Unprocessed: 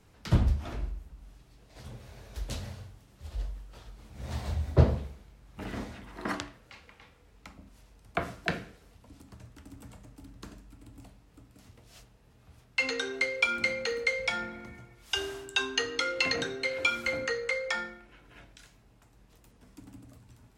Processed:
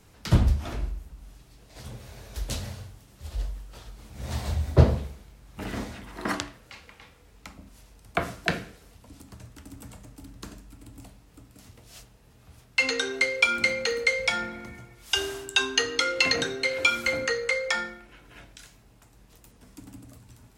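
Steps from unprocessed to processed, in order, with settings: high shelf 5200 Hz +6.5 dB; gain +4 dB

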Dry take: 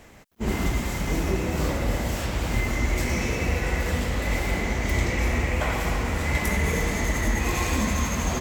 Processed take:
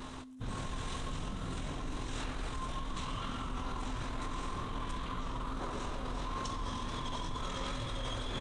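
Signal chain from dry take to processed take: limiter -21 dBFS, peak gain reduction 9.5 dB; vibrato 2.2 Hz 32 cents; feedback echo 0.137 s, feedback 20%, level -20 dB; reverb RT60 2.1 s, pre-delay 72 ms, DRR 18.5 dB; reverse; compressor 20:1, threshold -38 dBFS, peak gain reduction 14 dB; reverse; whine 500 Hz -51 dBFS; low shelf 240 Hz +4.5 dB; pitch shift -11.5 st; low shelf 490 Hz -7.5 dB; notch 4400 Hz, Q 27; gain +8 dB

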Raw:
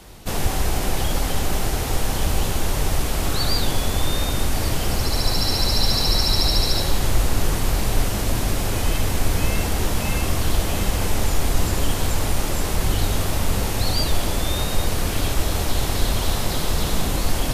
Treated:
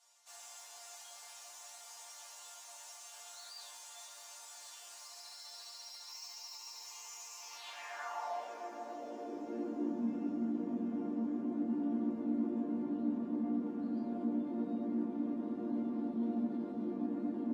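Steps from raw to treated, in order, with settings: band-pass sweep 6800 Hz -> 260 Hz, 7.36–8.75; limiter -26 dBFS, peak gain reduction 10 dB; soft clip -35 dBFS, distortion -12 dB; 6.08–7.57 ripple EQ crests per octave 0.77, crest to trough 11 dB; diffused feedback echo 0.711 s, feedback 47%, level -11.5 dB; high-pass sweep 800 Hz -> 230 Hz, 8.57–10.1; high shelf 2200 Hz -11.5 dB; resonator bank A#3 major, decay 0.28 s; gain +14 dB

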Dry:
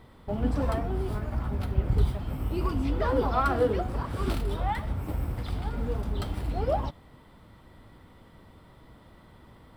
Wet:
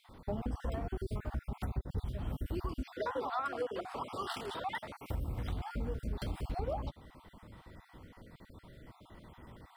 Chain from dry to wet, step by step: random spectral dropouts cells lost 35%; 2.95–5.1 weighting filter A; compressor 6:1, threshold -33 dBFS, peak gain reduction 14 dB

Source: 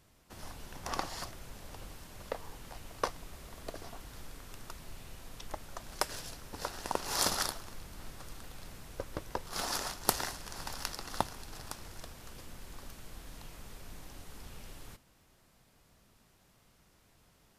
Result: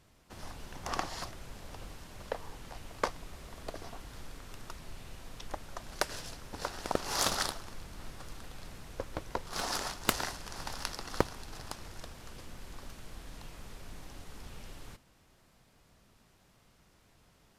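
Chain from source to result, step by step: high shelf 10000 Hz -5.5 dB; Doppler distortion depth 0.68 ms; gain +1.5 dB

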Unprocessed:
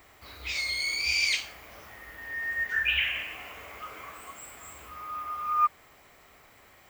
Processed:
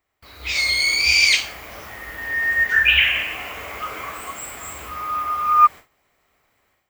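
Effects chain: gate with hold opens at -43 dBFS; AGC gain up to 12 dB

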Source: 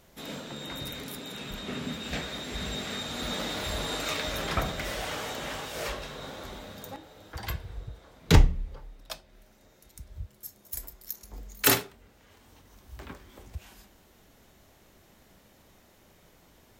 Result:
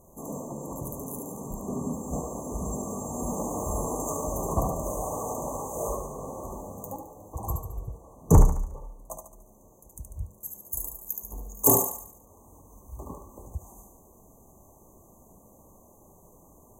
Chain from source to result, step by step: brick-wall FIR band-stop 1200–6000 Hz; sine folder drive 3 dB, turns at -5 dBFS; thinning echo 72 ms, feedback 49%, high-pass 420 Hz, level -4.5 dB; gain -3 dB

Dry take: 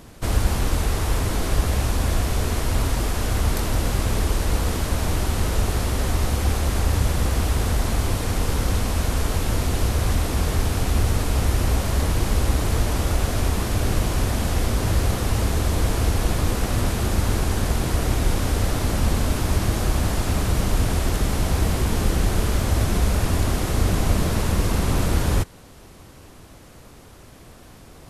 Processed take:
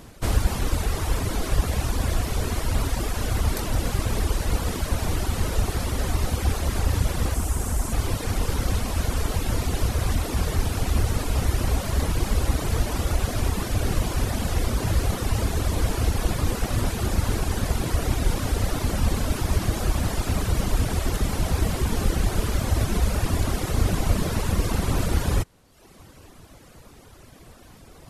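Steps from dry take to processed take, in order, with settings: reverb removal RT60 0.96 s; 7.34–7.93 graphic EQ 125/500/2000/4000/8000 Hz -4/-4/-4/-9/+7 dB

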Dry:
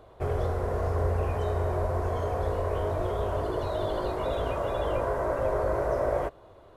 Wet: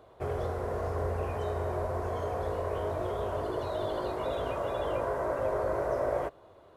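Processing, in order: HPF 110 Hz 6 dB/oct; gain -2.5 dB

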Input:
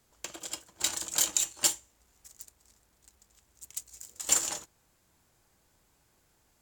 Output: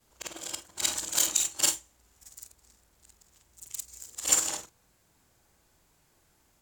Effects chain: short-time reversal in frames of 0.103 s; gain +5 dB

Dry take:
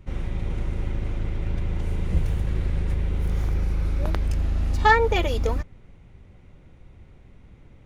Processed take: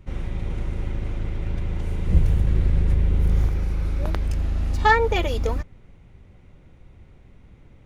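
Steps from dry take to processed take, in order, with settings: 2.07–3.48 low shelf 370 Hz +5.5 dB

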